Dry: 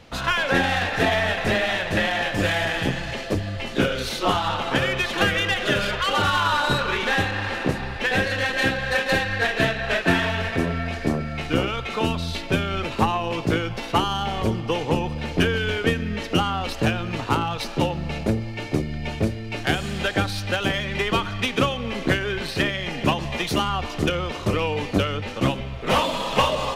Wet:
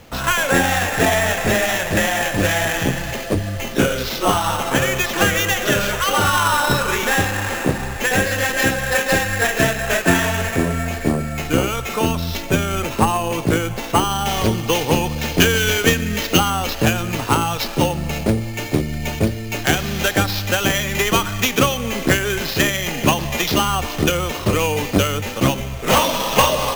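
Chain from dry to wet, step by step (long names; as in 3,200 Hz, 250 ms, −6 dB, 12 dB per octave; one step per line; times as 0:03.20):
high-shelf EQ 2,900 Hz −2 dB, from 0:14.26 +11 dB, from 0:16.38 +4 dB
sample-rate reduction 9,200 Hz, jitter 0%
level +4.5 dB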